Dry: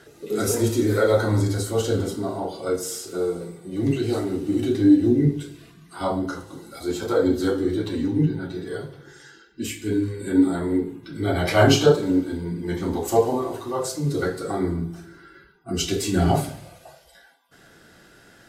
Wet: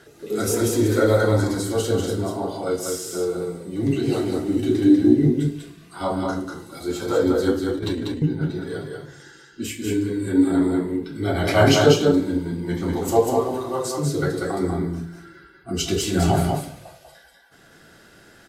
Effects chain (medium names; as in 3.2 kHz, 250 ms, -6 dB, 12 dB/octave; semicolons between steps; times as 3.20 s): 7.57–8.22 s: compressor with a negative ratio -28 dBFS, ratio -0.5; delay 193 ms -3.5 dB